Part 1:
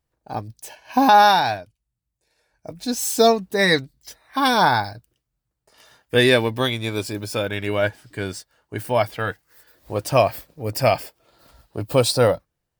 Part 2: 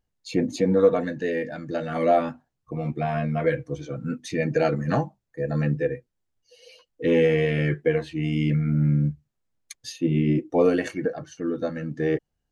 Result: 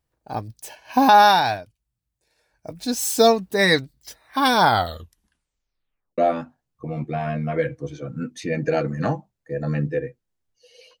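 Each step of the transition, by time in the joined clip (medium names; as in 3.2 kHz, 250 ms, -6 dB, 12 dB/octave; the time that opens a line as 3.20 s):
part 1
4.61 s: tape stop 1.57 s
6.18 s: go over to part 2 from 2.06 s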